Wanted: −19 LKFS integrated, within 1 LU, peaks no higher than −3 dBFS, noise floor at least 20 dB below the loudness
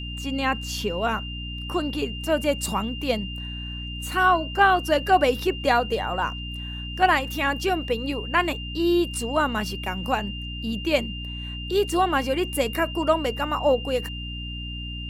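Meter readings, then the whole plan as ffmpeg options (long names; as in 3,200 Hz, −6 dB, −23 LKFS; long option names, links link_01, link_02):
mains hum 60 Hz; hum harmonics up to 300 Hz; level of the hum −32 dBFS; interfering tone 2,800 Hz; level of the tone −35 dBFS; integrated loudness −24.5 LKFS; sample peak −6.0 dBFS; target loudness −19.0 LKFS
→ -af "bandreject=frequency=60:width_type=h:width=6,bandreject=frequency=120:width_type=h:width=6,bandreject=frequency=180:width_type=h:width=6,bandreject=frequency=240:width_type=h:width=6,bandreject=frequency=300:width_type=h:width=6"
-af "bandreject=frequency=2800:width=30"
-af "volume=5.5dB,alimiter=limit=-3dB:level=0:latency=1"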